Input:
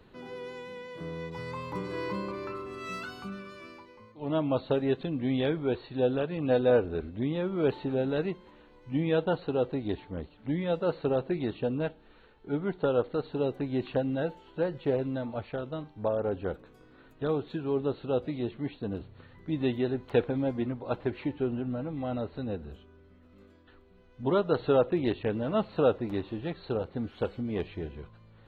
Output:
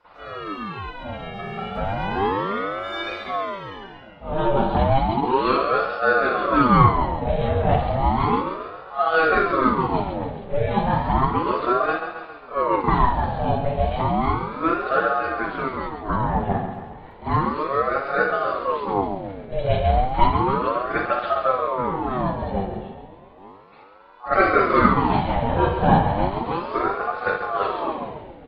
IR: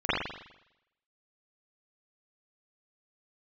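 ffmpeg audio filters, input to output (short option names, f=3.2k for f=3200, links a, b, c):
-filter_complex "[0:a]aecho=1:1:136|272|408|544|680|816|952:0.398|0.223|0.125|0.0699|0.0392|0.0219|0.0123[a];[1:a]atrim=start_sample=2205,atrim=end_sample=6174[b];[a][b]afir=irnorm=-1:irlink=0,aeval=exprs='val(0)*sin(2*PI*630*n/s+630*0.55/0.33*sin(2*PI*0.33*n/s))':c=same,volume=-2.5dB"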